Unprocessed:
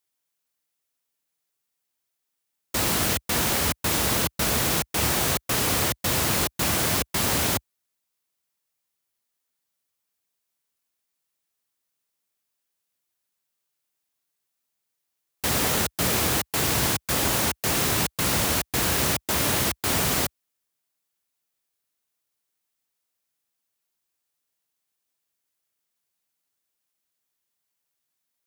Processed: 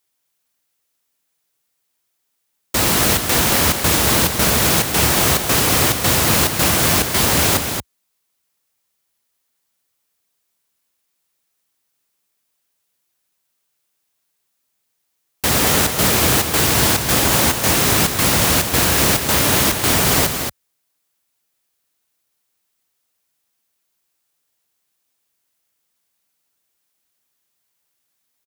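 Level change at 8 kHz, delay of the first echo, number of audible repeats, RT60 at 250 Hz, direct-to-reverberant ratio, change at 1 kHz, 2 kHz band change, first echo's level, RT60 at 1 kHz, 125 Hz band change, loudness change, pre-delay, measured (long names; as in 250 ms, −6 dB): +8.5 dB, 229 ms, 1, no reverb audible, no reverb audible, +8.5 dB, +8.5 dB, −6.5 dB, no reverb audible, +8.5 dB, +8.0 dB, no reverb audible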